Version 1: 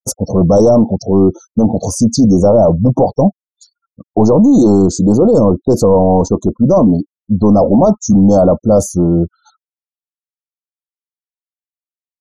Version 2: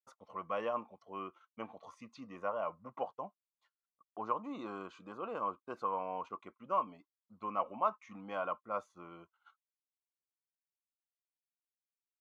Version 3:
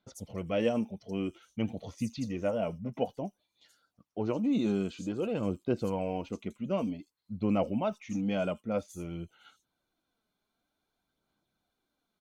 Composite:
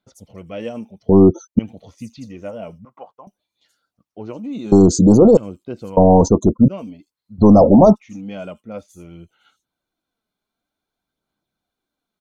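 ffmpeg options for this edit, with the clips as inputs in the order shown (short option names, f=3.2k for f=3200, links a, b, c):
-filter_complex "[0:a]asplit=4[a][b][c][d];[2:a]asplit=6[e][f][g][h][i][j];[e]atrim=end=1.092[k];[a]atrim=start=1.088:end=1.592[l];[f]atrim=start=1.588:end=2.852[m];[1:a]atrim=start=2.848:end=3.272[n];[g]atrim=start=3.268:end=4.722[o];[b]atrim=start=4.718:end=5.372[p];[h]atrim=start=5.368:end=5.972[q];[c]atrim=start=5.968:end=6.682[r];[i]atrim=start=6.678:end=7.4[s];[d]atrim=start=7.38:end=7.97[t];[j]atrim=start=7.95[u];[k][l]acrossfade=d=0.004:c1=hsin:c2=hsin[v];[v][m]acrossfade=d=0.004:c1=hsin:c2=hsin[w];[w][n]acrossfade=d=0.004:c1=hsin:c2=hsin[x];[x][o]acrossfade=d=0.004:c1=hsin:c2=hsin[y];[y][p]acrossfade=d=0.004:c1=hsin:c2=hsin[z];[z][q]acrossfade=d=0.004:c1=hsin:c2=hsin[aa];[aa][r]acrossfade=d=0.004:c1=hsin:c2=hsin[ab];[ab][s]acrossfade=d=0.004:c1=hsin:c2=hsin[ac];[ac][t]acrossfade=d=0.02:c1=tri:c2=tri[ad];[ad][u]acrossfade=d=0.02:c1=tri:c2=tri"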